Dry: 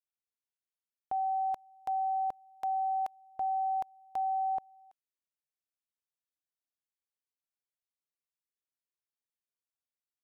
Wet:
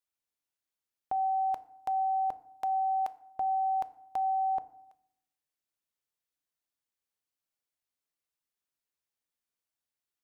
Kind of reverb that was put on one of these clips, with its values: FDN reverb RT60 0.73 s, low-frequency decay 1.4×, high-frequency decay 0.6×, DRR 13.5 dB; trim +3 dB

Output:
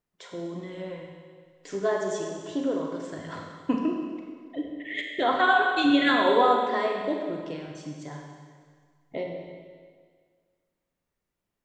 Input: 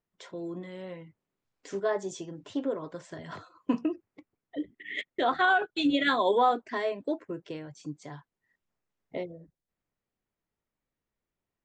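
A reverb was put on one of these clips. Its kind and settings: Schroeder reverb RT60 1.8 s, combs from 31 ms, DRR 1 dB; trim +1.5 dB

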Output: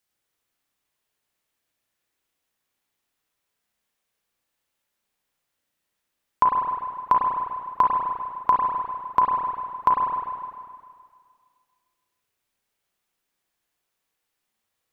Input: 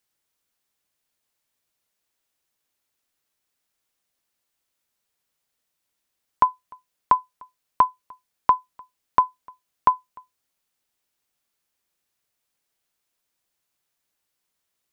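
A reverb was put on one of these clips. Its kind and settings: spring tank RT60 2 s, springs 32/50 ms, chirp 45 ms, DRR -2 dB; trim -2 dB

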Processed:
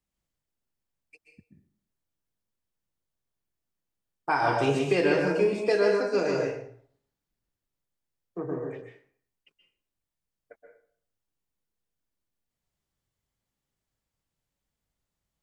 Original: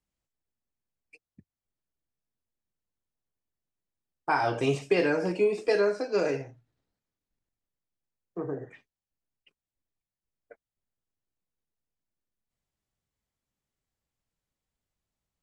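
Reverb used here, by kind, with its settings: plate-style reverb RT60 0.55 s, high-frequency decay 0.75×, pre-delay 115 ms, DRR 1.5 dB

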